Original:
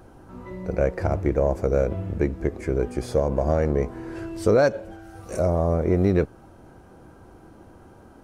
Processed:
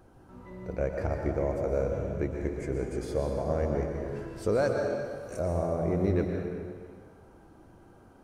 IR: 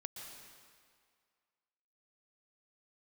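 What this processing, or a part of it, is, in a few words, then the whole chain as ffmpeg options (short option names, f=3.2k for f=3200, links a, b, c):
stairwell: -filter_complex "[1:a]atrim=start_sample=2205[a];[0:a][a]afir=irnorm=-1:irlink=0,asettb=1/sr,asplit=3[b][c][d];[b]atrim=end=2.314[e];[c]atrim=start=2.31:end=3.05,asetpts=PTS-STARTPTS,afade=t=in:d=0.004:c=qsin,afade=t=out:st=0.736:d=0.004:c=qsin,equalizer=f=7.4k:t=o:w=0.77:g=5.5[f];[d]atrim=start=3.046[g];[e][f]acrossfade=d=0.004:c1=hsin:c2=qsin[h];[h][g]acrossfade=d=0.004:c1=qsin:c2=hsin,volume=-3.5dB"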